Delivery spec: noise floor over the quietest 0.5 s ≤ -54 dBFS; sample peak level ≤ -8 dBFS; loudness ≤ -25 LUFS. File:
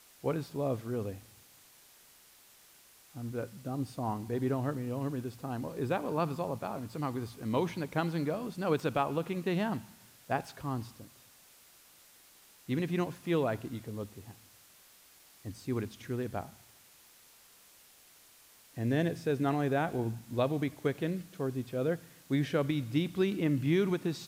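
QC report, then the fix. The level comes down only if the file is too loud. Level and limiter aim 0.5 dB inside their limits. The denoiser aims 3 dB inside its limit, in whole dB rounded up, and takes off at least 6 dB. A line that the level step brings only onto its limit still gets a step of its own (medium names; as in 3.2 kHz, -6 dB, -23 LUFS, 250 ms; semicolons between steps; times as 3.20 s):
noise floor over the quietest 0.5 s -60 dBFS: pass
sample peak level -16.5 dBFS: pass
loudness -34.0 LUFS: pass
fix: none needed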